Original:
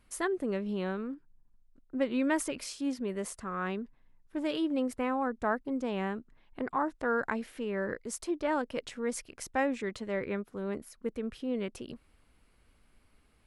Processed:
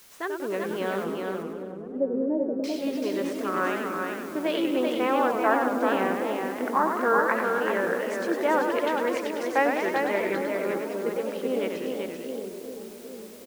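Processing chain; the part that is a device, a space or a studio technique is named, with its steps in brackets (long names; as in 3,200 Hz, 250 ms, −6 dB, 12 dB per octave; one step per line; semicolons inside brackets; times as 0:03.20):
dictaphone (band-pass filter 380–3,400 Hz; automatic gain control gain up to 7.5 dB; tape wow and flutter; white noise bed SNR 23 dB)
0:01.04–0:02.64: inverse Chebyshev low-pass filter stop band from 1,200 Hz, stop band 40 dB
single-tap delay 385 ms −4.5 dB
delay with a low-pass on its return 802 ms, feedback 47%, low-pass 540 Hz, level −6 dB
feedback echo with a swinging delay time 97 ms, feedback 62%, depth 215 cents, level −6 dB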